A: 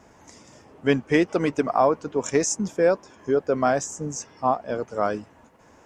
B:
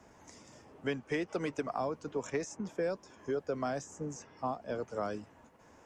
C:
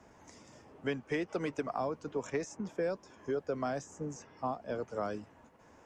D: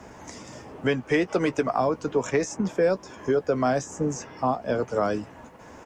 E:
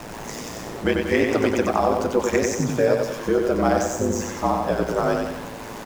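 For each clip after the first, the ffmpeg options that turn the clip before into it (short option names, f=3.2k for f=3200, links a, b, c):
-filter_complex "[0:a]acrossover=split=180|390|3300[a][b][c][d];[a]acompressor=threshold=-40dB:ratio=4[e];[b]acompressor=threshold=-36dB:ratio=4[f];[c]acompressor=threshold=-29dB:ratio=4[g];[d]acompressor=threshold=-45dB:ratio=4[h];[e][f][g][h]amix=inputs=4:normalize=0,volume=-6dB"
-af "highshelf=f=5.9k:g=-4.5"
-filter_complex "[0:a]asplit=2[a][b];[b]alimiter=level_in=7dB:limit=-24dB:level=0:latency=1:release=257,volume=-7dB,volume=0.5dB[c];[a][c]amix=inputs=2:normalize=0,asplit=2[d][e];[e]adelay=16,volume=-13.5dB[f];[d][f]amix=inputs=2:normalize=0,volume=7.5dB"
-af "aeval=exprs='val(0)+0.5*0.015*sgn(val(0))':c=same,aeval=exprs='val(0)*sin(2*PI*55*n/s)':c=same,aecho=1:1:93|186|279|372|465|558:0.631|0.309|0.151|0.0742|0.0364|0.0178,volume=4.5dB"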